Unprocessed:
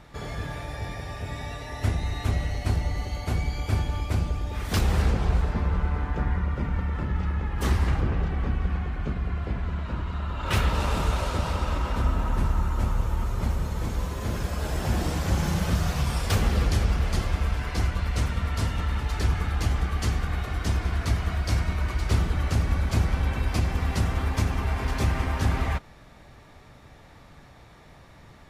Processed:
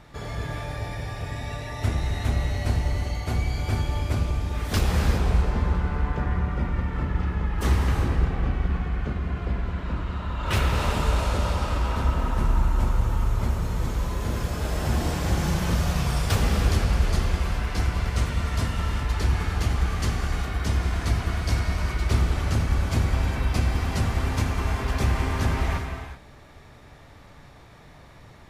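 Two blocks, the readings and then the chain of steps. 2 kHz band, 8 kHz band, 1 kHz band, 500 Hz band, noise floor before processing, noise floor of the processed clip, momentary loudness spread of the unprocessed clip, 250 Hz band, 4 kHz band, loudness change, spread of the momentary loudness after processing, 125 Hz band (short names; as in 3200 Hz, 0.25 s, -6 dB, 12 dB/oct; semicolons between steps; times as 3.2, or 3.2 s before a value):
+1.5 dB, +1.5 dB, +1.5 dB, +2.0 dB, -50 dBFS, -48 dBFS, 6 LU, +1.5 dB, +1.5 dB, +1.5 dB, 6 LU, +1.0 dB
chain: non-linear reverb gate 0.42 s flat, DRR 3.5 dB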